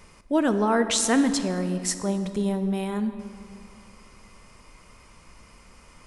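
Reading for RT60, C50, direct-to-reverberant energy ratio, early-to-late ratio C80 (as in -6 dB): 2.6 s, 10.0 dB, 9.5 dB, 10.5 dB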